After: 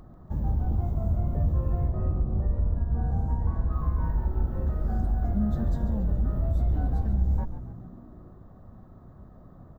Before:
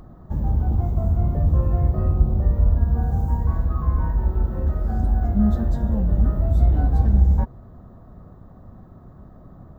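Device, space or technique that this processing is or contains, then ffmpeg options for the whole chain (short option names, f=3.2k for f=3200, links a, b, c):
clipper into limiter: -filter_complex "[0:a]asettb=1/sr,asplit=3[a][b][c];[a]atrim=end=1.884[d];[b]atrim=start=1.88:end=3.73,asetpts=PTS-STARTPTS,afade=t=in:d=0.004:c=qsin,afade=t=out:st=1.846:d=0.004:c=qsin,aemphasis=mode=reproduction:type=50kf[e];[c]atrim=start=3.726[f];[d][e]acrossfade=d=0.004:c1=hsin:c2=qsin[g];[g][f]acrossfade=d=0.004:c1=qsin:c2=hsin,asoftclip=type=hard:threshold=-7dB,alimiter=limit=-12.5dB:level=0:latency=1:release=164,asplit=8[h][i][j][k][l][m][n][o];[i]adelay=140,afreqshift=-61,volume=-11.5dB[p];[j]adelay=280,afreqshift=-122,volume=-15.9dB[q];[k]adelay=420,afreqshift=-183,volume=-20.4dB[r];[l]adelay=560,afreqshift=-244,volume=-24.8dB[s];[m]adelay=700,afreqshift=-305,volume=-29.2dB[t];[n]adelay=840,afreqshift=-366,volume=-33.7dB[u];[o]adelay=980,afreqshift=-427,volume=-38.1dB[v];[h][p][q][r][s][t][u][v]amix=inputs=8:normalize=0,volume=-5dB"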